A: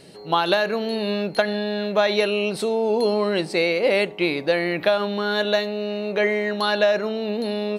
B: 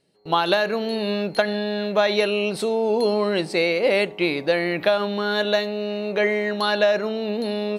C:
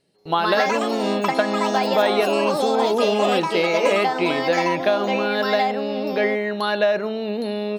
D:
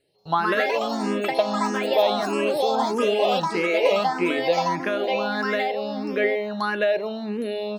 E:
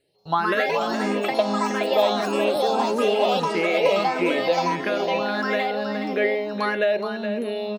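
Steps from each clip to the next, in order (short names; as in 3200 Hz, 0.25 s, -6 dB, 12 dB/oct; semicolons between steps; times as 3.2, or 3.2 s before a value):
gate with hold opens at -31 dBFS
echoes that change speed 0.184 s, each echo +4 st, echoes 3; dynamic EQ 6500 Hz, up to -7 dB, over -43 dBFS, Q 0.8
endless phaser +1.6 Hz
echo 0.42 s -8.5 dB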